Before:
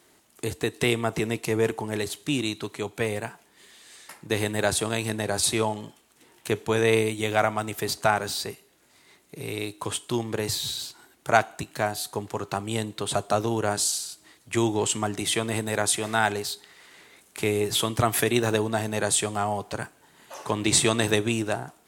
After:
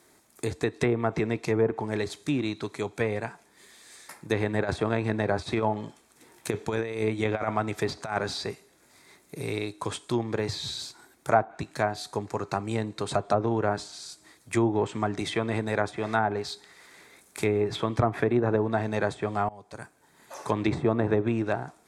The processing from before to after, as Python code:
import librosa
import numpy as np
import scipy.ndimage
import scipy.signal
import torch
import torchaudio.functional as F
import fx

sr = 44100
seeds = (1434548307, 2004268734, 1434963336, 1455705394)

y = fx.over_compress(x, sr, threshold_db=-25.0, ratio=-0.5, at=(4.53, 9.59))
y = fx.notch(y, sr, hz=3400.0, q=8.5, at=(12.25, 13.2))
y = fx.edit(y, sr, fx.fade_in_from(start_s=19.49, length_s=0.97, floor_db=-23.0), tone=tone)
y = fx.env_lowpass_down(y, sr, base_hz=950.0, full_db=-18.0)
y = fx.peak_eq(y, sr, hz=3400.0, db=-2.5, octaves=0.77)
y = fx.notch(y, sr, hz=2900.0, q=6.5)